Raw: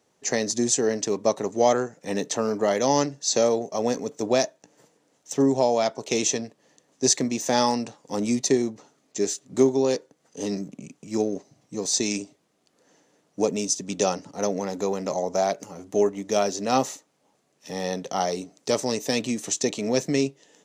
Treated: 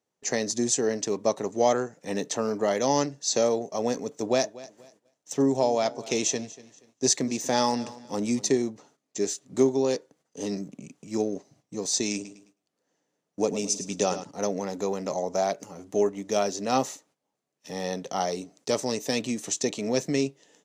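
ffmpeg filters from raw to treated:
-filter_complex "[0:a]asettb=1/sr,asplit=3[a][b][c];[a]atrim=end=4.184[d];[b]atrim=start=4.18:end=8.52,asetpts=PTS-STARTPTS,afade=t=in:d=0.004:c=qsin,afade=t=out:st=4.336:d=0.004:c=qsin,aecho=1:1:239|478|717:0.112|0.0337|0.0101,atrim=end_sample=191394[e];[c]atrim=start=8.516[f];[d][e]acrossfade=d=0.004:c1=hsin:c2=qsin[g];[g][f]acrossfade=d=0.004:c1=qsin:c2=hsin,asettb=1/sr,asplit=3[h][i][j];[h]atrim=end=12.144[k];[i]atrim=start=12.14:end=14.24,asetpts=PTS-STARTPTS,afade=t=in:d=0.004:c=qsin,afade=t=out:st=2.096:d=0.004:c=qsin,aecho=1:1:106|212|318|424:0.266|0.0931|0.0326|0.0114,atrim=end_sample=92610[l];[j]atrim=start=14.236[m];[k][l]acrossfade=d=0.004:c1=hsin:c2=qsin[n];[n][m]acrossfade=d=0.004:c1=qsin:c2=hsin,agate=range=-13dB:threshold=-56dB:ratio=16:detection=peak,volume=-2.5dB"

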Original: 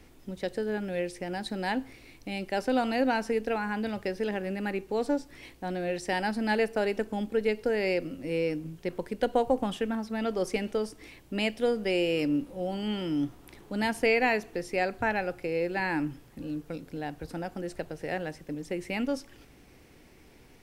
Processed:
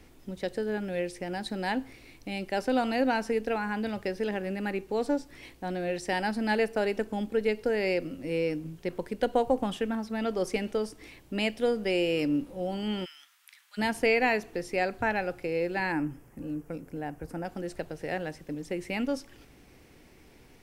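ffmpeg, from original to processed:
-filter_complex "[0:a]asplit=3[a][b][c];[a]afade=t=out:st=13.04:d=0.02[d];[b]highpass=f=1.5k:w=0.5412,highpass=f=1.5k:w=1.3066,afade=t=in:st=13.04:d=0.02,afade=t=out:st=13.77:d=0.02[e];[c]afade=t=in:st=13.77:d=0.02[f];[d][e][f]amix=inputs=3:normalize=0,asettb=1/sr,asplit=3[g][h][i];[g]atrim=end=15.924[j];[h]atrim=start=15.92:end=17.45,asetpts=PTS-STARTPTS,afade=t=in:d=0.004:c=qsin,afade=t=out:st=1.526:d=0.004:c=qsin,equalizer=f=3.9k:w=1.7:g=-14.5[k];[i]atrim=start=17.446[l];[j][k]acrossfade=d=0.004:c1=hsin:c2=qsin[m];[m][l]acrossfade=d=0.004:c1=qsin:c2=hsin"

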